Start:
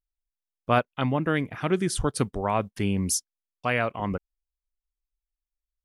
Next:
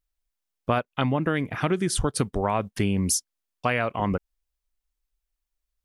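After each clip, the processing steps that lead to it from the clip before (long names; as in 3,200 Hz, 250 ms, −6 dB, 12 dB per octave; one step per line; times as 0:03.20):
downward compressor 5 to 1, threshold −27 dBFS, peak gain reduction 10.5 dB
level +6.5 dB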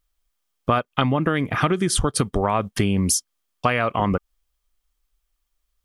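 downward compressor 3 to 1, threshold −26 dBFS, peak gain reduction 7 dB
hollow resonant body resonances 1,200/3,200 Hz, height 8 dB, ringing for 30 ms
level +8 dB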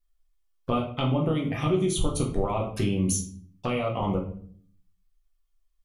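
flanger swept by the level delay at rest 2.8 ms, full sweep at −19.5 dBFS
rectangular room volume 59 cubic metres, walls mixed, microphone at 0.79 metres
level −8 dB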